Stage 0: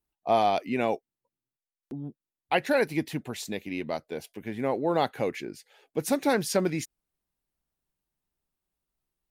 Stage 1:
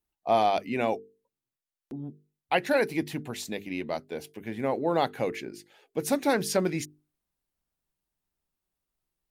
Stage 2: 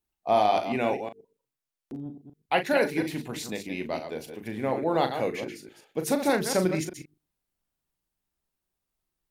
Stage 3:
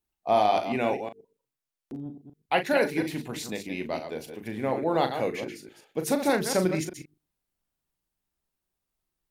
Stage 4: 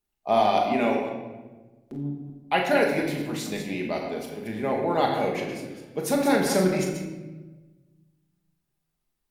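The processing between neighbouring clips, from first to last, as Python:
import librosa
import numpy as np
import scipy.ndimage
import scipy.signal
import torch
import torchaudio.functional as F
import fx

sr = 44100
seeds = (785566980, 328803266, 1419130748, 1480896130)

y1 = fx.hum_notches(x, sr, base_hz=50, count=9)
y2 = fx.reverse_delay(y1, sr, ms=121, wet_db=-8.0)
y2 = fx.doubler(y2, sr, ms=38.0, db=-9.0)
y3 = y2
y4 = fx.room_shoebox(y3, sr, seeds[0], volume_m3=810.0, walls='mixed', distance_m=1.3)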